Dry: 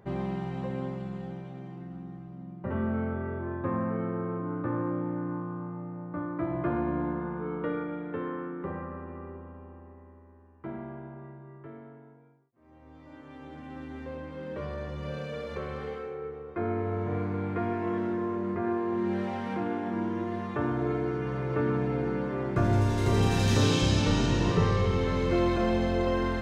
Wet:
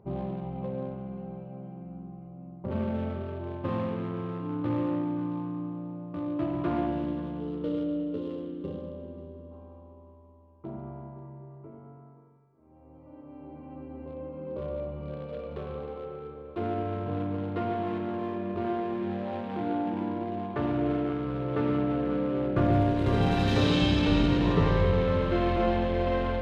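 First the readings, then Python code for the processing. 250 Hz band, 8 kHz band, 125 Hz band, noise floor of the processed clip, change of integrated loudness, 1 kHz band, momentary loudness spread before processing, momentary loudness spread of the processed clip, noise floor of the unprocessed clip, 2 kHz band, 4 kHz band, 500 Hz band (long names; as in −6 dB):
+1.5 dB, can't be measured, −1.0 dB, −53 dBFS, +0.5 dB, +0.5 dB, 18 LU, 19 LU, −53 dBFS, −1.5 dB, 0.0 dB, +0.5 dB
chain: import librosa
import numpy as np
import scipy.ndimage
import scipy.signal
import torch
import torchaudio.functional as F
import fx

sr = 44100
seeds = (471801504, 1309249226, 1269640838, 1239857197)

p1 = fx.wiener(x, sr, points=25)
p2 = fx.spec_box(p1, sr, start_s=6.87, length_s=2.64, low_hz=640.0, high_hz=2700.0, gain_db=-11)
p3 = fx.high_shelf_res(p2, sr, hz=4800.0, db=-8.0, q=1.5)
p4 = p3 + fx.echo_heads(p3, sr, ms=178, heads='second and third', feedback_pct=43, wet_db=-18.0, dry=0)
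y = fx.rev_spring(p4, sr, rt60_s=1.8, pass_ms=(44,), chirp_ms=35, drr_db=2.5)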